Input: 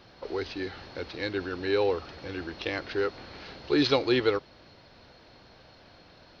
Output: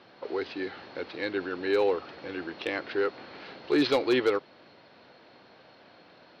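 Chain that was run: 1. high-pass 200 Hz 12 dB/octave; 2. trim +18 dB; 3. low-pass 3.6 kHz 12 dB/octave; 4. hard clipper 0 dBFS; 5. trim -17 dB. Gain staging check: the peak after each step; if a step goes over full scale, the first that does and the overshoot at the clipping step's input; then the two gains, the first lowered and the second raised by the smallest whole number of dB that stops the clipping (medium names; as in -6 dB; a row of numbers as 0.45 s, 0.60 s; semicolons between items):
-9.0 dBFS, +9.0 dBFS, +8.5 dBFS, 0.0 dBFS, -17.0 dBFS; step 2, 8.5 dB; step 2 +9 dB, step 5 -8 dB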